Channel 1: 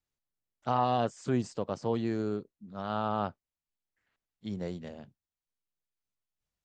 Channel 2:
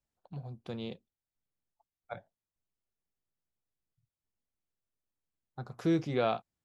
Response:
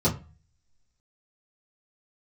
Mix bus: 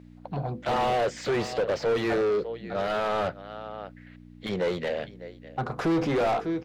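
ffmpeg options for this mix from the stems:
-filter_complex "[0:a]equalizer=f=125:t=o:w=1:g=4,equalizer=f=250:t=o:w=1:g=-7,equalizer=f=500:t=o:w=1:g=10,equalizer=f=1000:t=o:w=1:g=-7,equalizer=f=2000:t=o:w=1:g=12,equalizer=f=4000:t=o:w=1:g=9,aeval=exprs='val(0)+0.00251*(sin(2*PI*60*n/s)+sin(2*PI*2*60*n/s)/2+sin(2*PI*3*60*n/s)/3+sin(2*PI*4*60*n/s)/4+sin(2*PI*5*60*n/s)/5)':c=same,volume=0.422,asplit=2[s0][s1];[s1]volume=0.0631[s2];[1:a]bandreject=f=50:t=h:w=6,bandreject=f=100:t=h:w=6,bandreject=f=150:t=h:w=6,bandreject=f=200:t=h:w=6,bandreject=f=250:t=h:w=6,bandreject=f=300:t=h:w=6,bandreject=f=350:t=h:w=6,bandreject=f=400:t=h:w=6,bandreject=f=450:t=h:w=6,bandreject=f=500:t=h:w=6,volume=0.794,asplit=2[s3][s4];[s4]volume=0.141[s5];[s2][s5]amix=inputs=2:normalize=0,aecho=0:1:600:1[s6];[s0][s3][s6]amix=inputs=3:normalize=0,asplit=2[s7][s8];[s8]highpass=f=720:p=1,volume=50.1,asoftclip=type=tanh:threshold=0.158[s9];[s7][s9]amix=inputs=2:normalize=0,lowpass=f=1100:p=1,volume=0.501"

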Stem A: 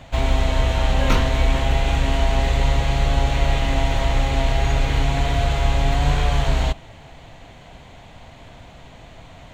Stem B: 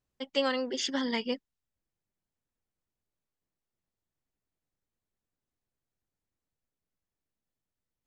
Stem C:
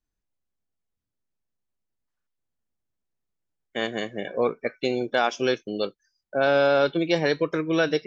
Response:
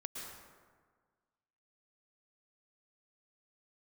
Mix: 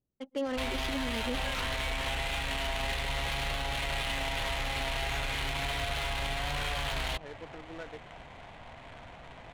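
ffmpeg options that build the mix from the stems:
-filter_complex "[0:a]tiltshelf=f=1300:g=-6.5,adelay=450,volume=1.41[s0];[1:a]equalizer=f=250:t=o:w=2.7:g=6,acrossover=split=1100[s1][s2];[s1]aeval=exprs='val(0)*(1-0.5/2+0.5/2*cos(2*PI*2.3*n/s))':c=same[s3];[s2]aeval=exprs='val(0)*(1-0.5/2-0.5/2*cos(2*PI*2.3*n/s))':c=same[s4];[s3][s4]amix=inputs=2:normalize=0,volume=0.75,asplit=2[s5][s6];[s6]volume=0.126[s7];[2:a]volume=0.112[s8];[s0][s8]amix=inputs=2:normalize=0,lowshelf=f=500:g=-5.5,acompressor=threshold=0.0501:ratio=12,volume=1[s9];[3:a]atrim=start_sample=2205[s10];[s7][s10]afir=irnorm=-1:irlink=0[s11];[s5][s9][s11]amix=inputs=3:normalize=0,adynamicsmooth=sensitivity=6.5:basefreq=860,alimiter=level_in=1.06:limit=0.0631:level=0:latency=1:release=14,volume=0.944"

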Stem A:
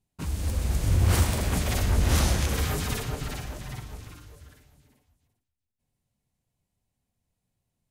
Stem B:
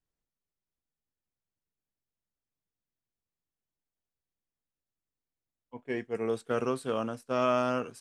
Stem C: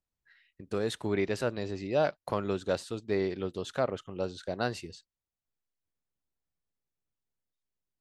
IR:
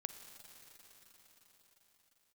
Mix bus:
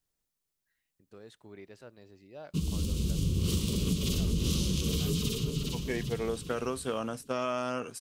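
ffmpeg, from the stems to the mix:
-filter_complex "[0:a]firequalizer=gain_entry='entry(110,0);entry(170,14);entry(240,5);entry(440,6);entry(740,-23);entry(1100,-5);entry(1700,-20);entry(2900,8);entry(9200,1)':delay=0.05:min_phase=1,adelay=2350,volume=0.708[s0];[1:a]highshelf=f=3600:g=9,acompressor=threshold=0.0282:ratio=2.5,volume=1.26[s1];[2:a]adelay=400,volume=0.106[s2];[s0][s1][s2]amix=inputs=3:normalize=0,acompressor=threshold=0.0501:ratio=4"

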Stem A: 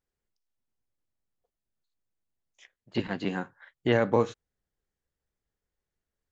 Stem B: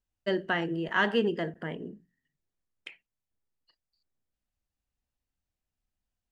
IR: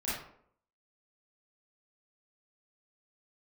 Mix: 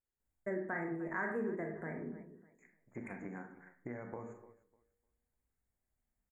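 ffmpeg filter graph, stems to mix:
-filter_complex "[0:a]bandreject=f=52.61:t=h:w=4,bandreject=f=105.22:t=h:w=4,bandreject=f=157.83:t=h:w=4,bandreject=f=210.44:t=h:w=4,bandreject=f=263.05:t=h:w=4,bandreject=f=315.66:t=h:w=4,bandreject=f=368.27:t=h:w=4,bandreject=f=420.88:t=h:w=4,bandreject=f=473.49:t=h:w=4,acompressor=threshold=0.0398:ratio=6,volume=0.266,asplit=3[s0][s1][s2];[s1]volume=0.376[s3];[s2]volume=0.106[s4];[1:a]equalizer=f=1400:t=o:w=0.41:g=-3,adelay=200,volume=0.668,asplit=3[s5][s6][s7];[s6]volume=0.501[s8];[s7]volume=0.158[s9];[2:a]atrim=start_sample=2205[s10];[s3][s8]amix=inputs=2:normalize=0[s11];[s11][s10]afir=irnorm=-1:irlink=0[s12];[s4][s9]amix=inputs=2:normalize=0,aecho=0:1:300|600|900|1200:1|0.22|0.0484|0.0106[s13];[s0][s5][s12][s13]amix=inputs=4:normalize=0,asuperstop=centerf=4000:order=20:qfactor=0.93,acompressor=threshold=0.00708:ratio=2"

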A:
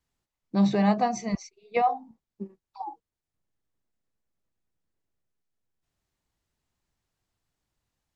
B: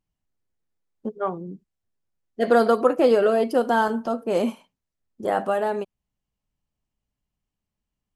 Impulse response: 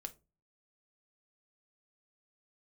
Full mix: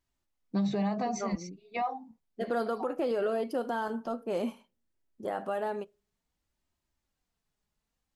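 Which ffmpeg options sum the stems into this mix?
-filter_complex "[0:a]flanger=delay=3.1:depth=1.7:regen=-30:speed=0.59:shape=sinusoidal,volume=1.12[s0];[1:a]equalizer=f=7900:t=o:w=0.48:g=-3.5,volume=0.299,asplit=2[s1][s2];[s2]volume=0.447[s3];[2:a]atrim=start_sample=2205[s4];[s3][s4]afir=irnorm=-1:irlink=0[s5];[s0][s1][s5]amix=inputs=3:normalize=0,alimiter=limit=0.075:level=0:latency=1:release=85"

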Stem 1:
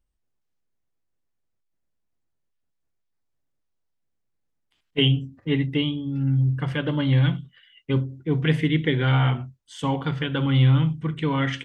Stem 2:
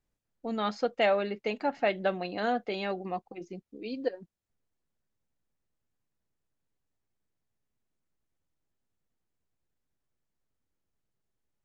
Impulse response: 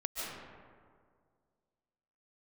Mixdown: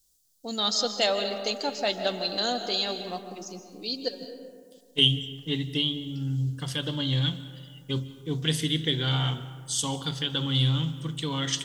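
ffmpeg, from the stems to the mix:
-filter_complex "[0:a]volume=0.376,asplit=2[s0][s1];[s1]volume=0.178[s2];[1:a]volume=0.631,asplit=2[s3][s4];[s4]volume=0.447[s5];[2:a]atrim=start_sample=2205[s6];[s2][s5]amix=inputs=2:normalize=0[s7];[s7][s6]afir=irnorm=-1:irlink=0[s8];[s0][s3][s8]amix=inputs=3:normalize=0,aexciter=amount=12.4:drive=6.5:freq=3500"

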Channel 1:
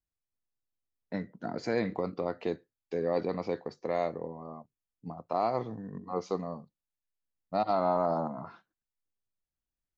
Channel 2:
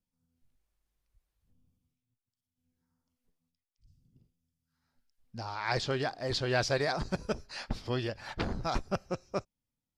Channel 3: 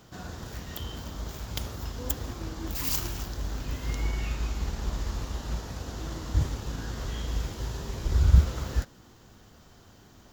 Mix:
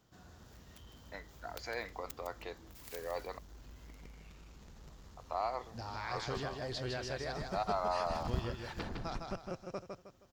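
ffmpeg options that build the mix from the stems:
-filter_complex "[0:a]highpass=810,volume=0.75,asplit=3[s0][s1][s2];[s0]atrim=end=3.39,asetpts=PTS-STARTPTS,afade=t=out:st=3.386:d=0.004:c=hsin[s3];[s1]atrim=start=3.39:end=5.17,asetpts=PTS-STARTPTS,volume=0[s4];[s2]atrim=start=5.17,asetpts=PTS-STARTPTS,afade=t=in:d=0.004:c=hsin[s5];[s3][s4][s5]concat=n=3:v=0:a=1[s6];[1:a]acompressor=threshold=0.0224:ratio=6,adelay=400,volume=0.596,asplit=2[s7][s8];[s8]volume=0.596[s9];[2:a]acompressor=threshold=0.0158:ratio=1.5,aeval=exprs='0.237*(cos(1*acos(clip(val(0)/0.237,-1,1)))-cos(1*PI/2))+0.0531*(cos(7*acos(clip(val(0)/0.237,-1,1)))-cos(7*PI/2))':c=same,volume=0.282,asplit=2[s10][s11];[s11]volume=0.355[s12];[s9][s12]amix=inputs=2:normalize=0,aecho=0:1:157|314|471|628|785:1|0.34|0.116|0.0393|0.0134[s13];[s6][s7][s10][s13]amix=inputs=4:normalize=0"

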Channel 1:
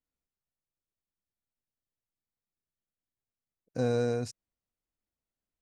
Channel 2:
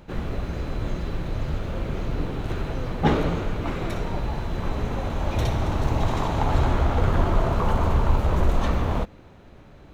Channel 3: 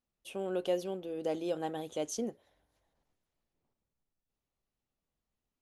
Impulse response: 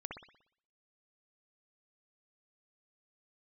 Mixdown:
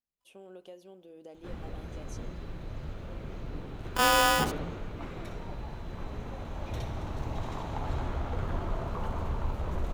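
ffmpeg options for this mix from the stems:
-filter_complex "[0:a]aecho=1:1:4.3:0.68,aeval=exprs='max(val(0),0)':c=same,aeval=exprs='val(0)*sgn(sin(2*PI*1000*n/s))':c=same,adelay=200,volume=1.26,asplit=2[s0][s1];[s1]volume=0.376[s2];[1:a]adelay=1350,volume=0.251[s3];[2:a]acompressor=threshold=0.0178:ratio=3,volume=0.251,asplit=2[s4][s5];[s5]volume=0.224[s6];[3:a]atrim=start_sample=2205[s7];[s2][s6]amix=inputs=2:normalize=0[s8];[s8][s7]afir=irnorm=-1:irlink=0[s9];[s0][s3][s4][s9]amix=inputs=4:normalize=0"

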